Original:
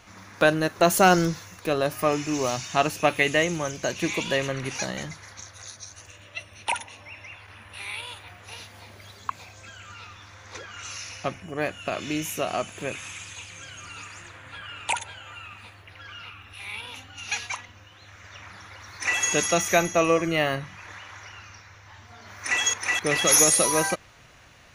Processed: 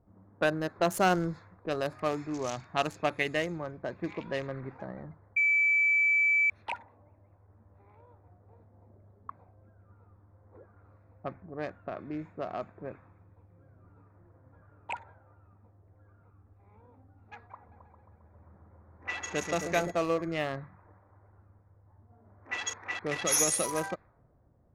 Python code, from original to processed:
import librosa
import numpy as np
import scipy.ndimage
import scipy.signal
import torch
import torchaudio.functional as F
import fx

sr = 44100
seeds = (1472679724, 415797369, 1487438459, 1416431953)

y = fx.high_shelf(x, sr, hz=2800.0, db=7.5, at=(1.34, 3.03))
y = fx.echo_opening(y, sr, ms=134, hz=400, octaves=2, feedback_pct=70, wet_db=-3, at=(17.6, 19.9), fade=0.02)
y = fx.edit(y, sr, fx.bleep(start_s=5.36, length_s=1.14, hz=2310.0, db=-13.5), tone=tone)
y = fx.wiener(y, sr, points=15)
y = fx.env_lowpass(y, sr, base_hz=460.0, full_db=-19.5)
y = y * 10.0 ** (-7.5 / 20.0)